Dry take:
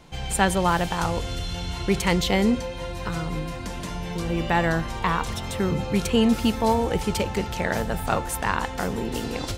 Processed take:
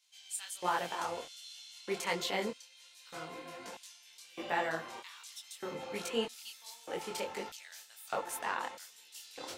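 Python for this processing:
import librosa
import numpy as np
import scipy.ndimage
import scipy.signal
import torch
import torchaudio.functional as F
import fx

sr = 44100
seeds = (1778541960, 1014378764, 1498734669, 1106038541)

y = fx.filter_lfo_highpass(x, sr, shape='square', hz=0.8, low_hz=420.0, high_hz=4100.0, q=0.83)
y = fx.detune_double(y, sr, cents=46)
y = F.gain(torch.from_numpy(y), -6.5).numpy()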